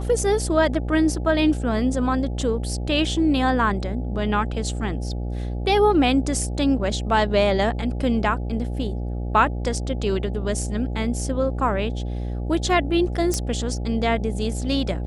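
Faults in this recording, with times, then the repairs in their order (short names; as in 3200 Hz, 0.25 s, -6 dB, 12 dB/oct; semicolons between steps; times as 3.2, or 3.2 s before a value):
buzz 60 Hz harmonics 14 -27 dBFS
13.34 pop -10 dBFS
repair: de-click; de-hum 60 Hz, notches 14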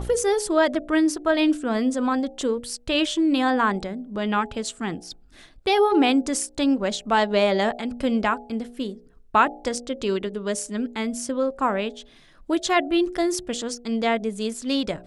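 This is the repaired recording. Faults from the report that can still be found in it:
none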